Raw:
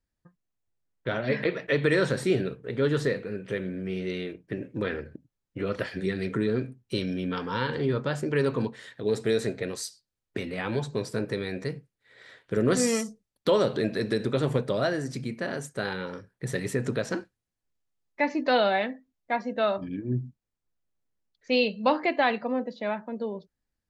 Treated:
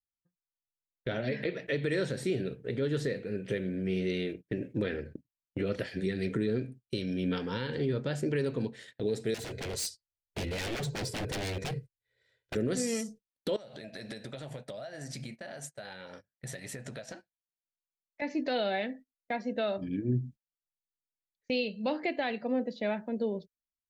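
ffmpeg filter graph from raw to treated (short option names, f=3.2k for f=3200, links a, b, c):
-filter_complex "[0:a]asettb=1/sr,asplit=3[a][b][c];[a]atrim=end=9.344[d];[b]atrim=start=9.34:end=12.55,asetpts=PTS-STARTPTS,afade=t=in:d=0.004:c=qsin,afade=t=out:st=3.206:d=0.004:c=qsin,lowshelf=f=140:t=q:w=1.5:g=6.5,aecho=1:1:2:0.52,atrim=end_sample=141561,aeval=exprs='0.0299*(abs(mod(val(0)/0.0299+3,4)-2)-1)':c=same[e];[c]atrim=start=12.546[f];[d][e]acrossfade=d=0.004:c1=hsin:c2=qsin[g];[g][f]acrossfade=d=0.004:c1=qsin:c2=hsin,asettb=1/sr,asplit=3[h][i][j];[h]atrim=end=13.564[k];[i]atrim=start=13.56:end=18.22,asetpts=PTS-STARTPTS,afade=t=in:d=0.004:c=qsin,afade=t=out:st=4.656:d=0.004:c=qsin,lowshelf=f=520:t=q:w=3:g=-6.5,acompressor=threshold=-38dB:ratio=16:attack=3.2:release=140:knee=1:detection=peak,asplit=2[l][m];[m]adelay=14,volume=-13dB[n];[l][n]amix=inputs=2:normalize=0,atrim=end_sample=205506[o];[j]atrim=start=18.216[p];[k][o]acrossfade=d=0.004:c1=hsin:c2=qsin[q];[q][p]acrossfade=d=0.004:c1=qsin:c2=hsin,agate=range=-24dB:threshold=-44dB:ratio=16:detection=peak,equalizer=f=1.1k:t=o:w=0.79:g=-11.5,alimiter=limit=-24dB:level=0:latency=1:release=476,volume=2.5dB"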